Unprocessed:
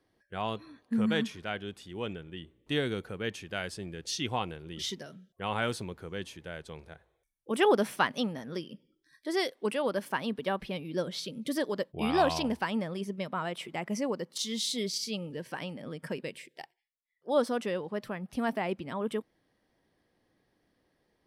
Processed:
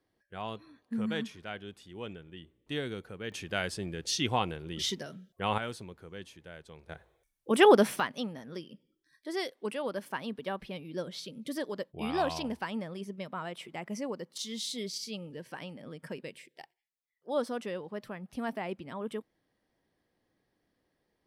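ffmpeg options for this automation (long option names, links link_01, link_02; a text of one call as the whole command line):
ffmpeg -i in.wav -af "asetnsamples=nb_out_samples=441:pad=0,asendcmd='3.32 volume volume 3dB;5.58 volume volume -6.5dB;6.89 volume volume 4.5dB;8 volume volume -4.5dB',volume=-5dB" out.wav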